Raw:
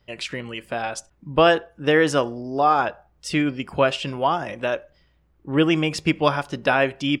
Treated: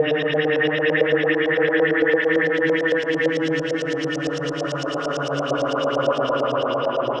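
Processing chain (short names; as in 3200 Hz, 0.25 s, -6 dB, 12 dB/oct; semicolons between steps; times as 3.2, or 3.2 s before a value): Paulstretch 21×, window 0.25 s, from 1.89; LFO low-pass saw up 8.9 Hz 540–5900 Hz; gain -4.5 dB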